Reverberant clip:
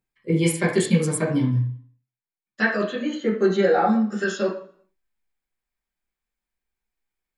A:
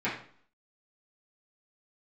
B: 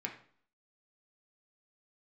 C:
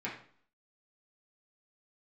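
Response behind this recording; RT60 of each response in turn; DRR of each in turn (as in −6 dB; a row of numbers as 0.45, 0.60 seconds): C; 0.50, 0.55, 0.50 seconds; −11.0, 1.0, −6.5 decibels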